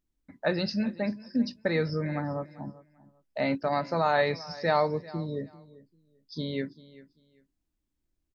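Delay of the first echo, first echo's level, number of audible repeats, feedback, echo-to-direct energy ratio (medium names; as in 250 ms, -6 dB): 392 ms, -19.5 dB, 2, 22%, -19.5 dB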